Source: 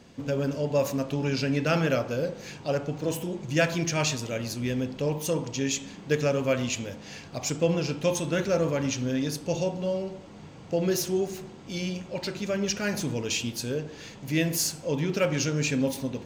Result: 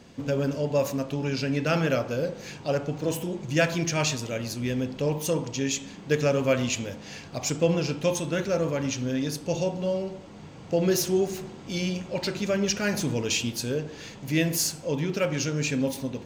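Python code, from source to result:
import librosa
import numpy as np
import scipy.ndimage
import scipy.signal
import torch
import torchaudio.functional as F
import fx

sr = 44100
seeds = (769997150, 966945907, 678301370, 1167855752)

y = fx.rider(x, sr, range_db=10, speed_s=2.0)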